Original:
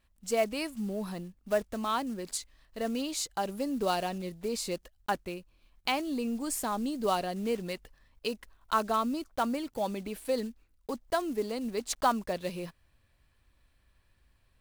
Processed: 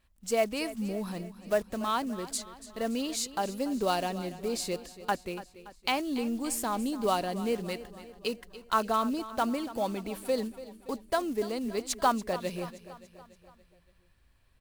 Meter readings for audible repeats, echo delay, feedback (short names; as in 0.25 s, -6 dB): 4, 0.286 s, 56%